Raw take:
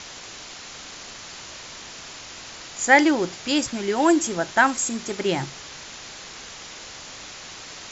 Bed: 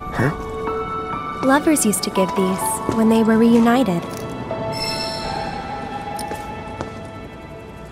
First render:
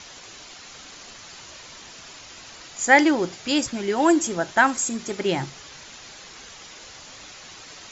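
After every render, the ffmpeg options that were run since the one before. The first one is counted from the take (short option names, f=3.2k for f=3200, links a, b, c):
-af "afftdn=nr=6:nf=-40"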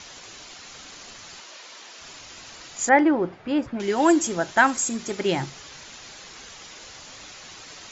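-filter_complex "[0:a]asettb=1/sr,asplit=3[a][b][c];[a]atrim=end=1.404[d];[b]atrim=start=1.4:end=2.01,asetpts=PTS-STARTPTS,afade=t=in:d=0.004:c=qsin,afade=t=out:st=0.606:d=0.004:c=qsin,highpass=370,lowpass=7k[e];[c]atrim=start=2.006[f];[d][e]acrossfade=d=0.004:c1=hsin:c2=qsin[g];[g][f]acrossfade=d=0.004:c1=qsin:c2=hsin,asettb=1/sr,asplit=3[h][i][j];[h]atrim=end=2.894[k];[i]atrim=start=2.89:end=3.8,asetpts=PTS-STARTPTS,afade=t=in:d=0.004:c=qsin,afade=t=out:st=0.906:d=0.004:c=qsin,lowpass=1.5k[l];[j]atrim=start=3.796[m];[k][l]acrossfade=d=0.004:c1=hsin:c2=qsin[n];[n][m]acrossfade=d=0.004:c1=qsin:c2=hsin"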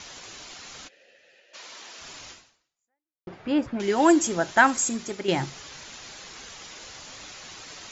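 -filter_complex "[0:a]asplit=3[a][b][c];[a]afade=t=out:st=0.87:d=0.02[d];[b]asplit=3[e][f][g];[e]bandpass=f=530:t=q:w=8,volume=0dB[h];[f]bandpass=f=1.84k:t=q:w=8,volume=-6dB[i];[g]bandpass=f=2.48k:t=q:w=8,volume=-9dB[j];[h][i][j]amix=inputs=3:normalize=0,afade=t=in:st=0.87:d=0.02,afade=t=out:st=1.53:d=0.02[k];[c]afade=t=in:st=1.53:d=0.02[l];[d][k][l]amix=inputs=3:normalize=0,asplit=3[m][n][o];[m]atrim=end=3.27,asetpts=PTS-STARTPTS,afade=t=out:st=2.3:d=0.97:c=exp[p];[n]atrim=start=3.27:end=5.28,asetpts=PTS-STARTPTS,afade=t=in:d=0.004:c=hsin,afade=t=out:st=1.61:d=0.4:silence=0.421697[q];[o]atrim=start=5.28,asetpts=PTS-STARTPTS,afade=t=in:d=0.004:c=hsin:silence=0.421697[r];[p][q][r]concat=n=3:v=0:a=1"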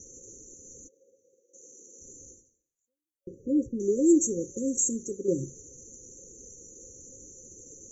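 -af "afftfilt=real='re*(1-between(b*sr/4096,550,5800))':imag='im*(1-between(b*sr/4096,550,5800))':win_size=4096:overlap=0.75,equalizer=f=160:w=1.4:g=-5"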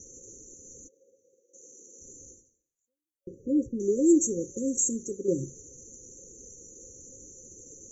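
-af anull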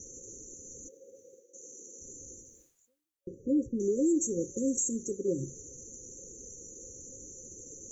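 -af "alimiter=limit=-20.5dB:level=0:latency=1:release=167,areverse,acompressor=mode=upward:threshold=-43dB:ratio=2.5,areverse"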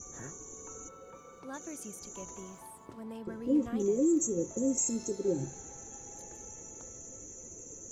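-filter_complex "[1:a]volume=-28.5dB[a];[0:a][a]amix=inputs=2:normalize=0"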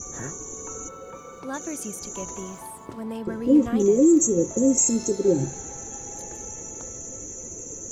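-af "volume=10.5dB"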